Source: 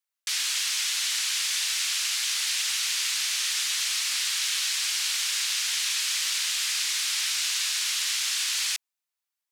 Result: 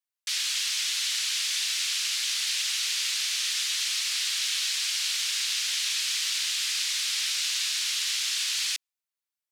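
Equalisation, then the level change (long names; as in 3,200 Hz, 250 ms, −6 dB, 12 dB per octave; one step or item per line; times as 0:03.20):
high-pass filter 710 Hz 6 dB per octave
dynamic equaliser 3,700 Hz, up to +5 dB, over −40 dBFS, Q 0.71
−4.5 dB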